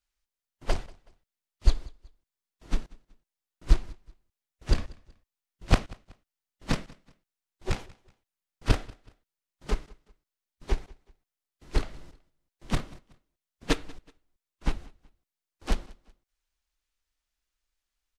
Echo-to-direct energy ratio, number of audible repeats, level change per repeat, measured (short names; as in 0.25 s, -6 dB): -23.0 dB, 2, -9.0 dB